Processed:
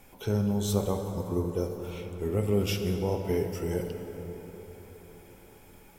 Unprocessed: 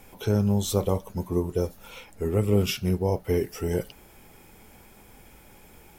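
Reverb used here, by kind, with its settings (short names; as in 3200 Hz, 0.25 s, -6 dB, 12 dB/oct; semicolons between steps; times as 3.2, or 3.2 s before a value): plate-style reverb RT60 4.5 s, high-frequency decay 0.45×, DRR 4.5 dB; gain -4.5 dB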